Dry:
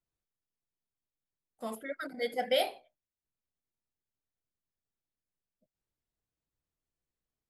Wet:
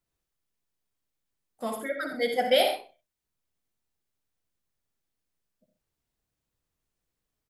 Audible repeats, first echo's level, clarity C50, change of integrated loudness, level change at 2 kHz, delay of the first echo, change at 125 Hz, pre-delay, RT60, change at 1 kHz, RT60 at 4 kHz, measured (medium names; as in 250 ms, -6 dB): 2, -8.0 dB, no reverb, +7.0 dB, +7.0 dB, 60 ms, no reading, no reverb, no reverb, +7.0 dB, no reverb